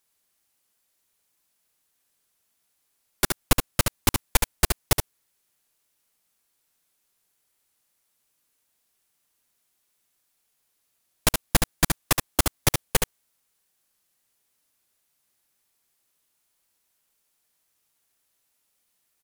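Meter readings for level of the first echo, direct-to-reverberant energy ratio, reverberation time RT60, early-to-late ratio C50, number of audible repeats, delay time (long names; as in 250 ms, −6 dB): −5.0 dB, no reverb audible, no reverb audible, no reverb audible, 1, 71 ms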